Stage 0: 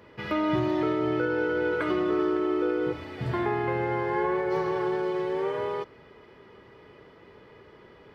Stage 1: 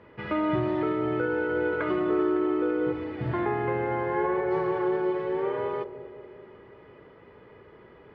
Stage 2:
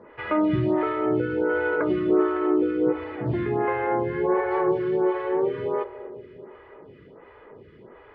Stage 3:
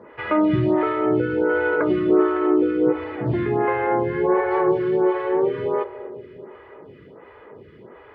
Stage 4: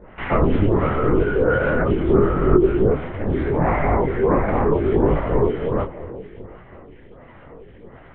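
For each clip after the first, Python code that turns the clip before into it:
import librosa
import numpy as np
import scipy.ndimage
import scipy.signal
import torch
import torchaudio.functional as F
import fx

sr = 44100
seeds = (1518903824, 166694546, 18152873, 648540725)

y1 = scipy.signal.sosfilt(scipy.signal.butter(2, 2500.0, 'lowpass', fs=sr, output='sos'), x)
y1 = fx.echo_bbd(y1, sr, ms=192, stages=1024, feedback_pct=67, wet_db=-12.5)
y2 = fx.air_absorb(y1, sr, metres=83.0)
y2 = fx.stagger_phaser(y2, sr, hz=1.4)
y2 = y2 * 10.0 ** (6.5 / 20.0)
y3 = scipy.signal.sosfilt(scipy.signal.butter(2, 59.0, 'highpass', fs=sr, output='sos'), y2)
y3 = y3 * 10.0 ** (3.5 / 20.0)
y4 = fx.lpc_vocoder(y3, sr, seeds[0], excitation='whisper', order=8)
y4 = fx.detune_double(y4, sr, cents=27)
y4 = y4 * 10.0 ** (5.5 / 20.0)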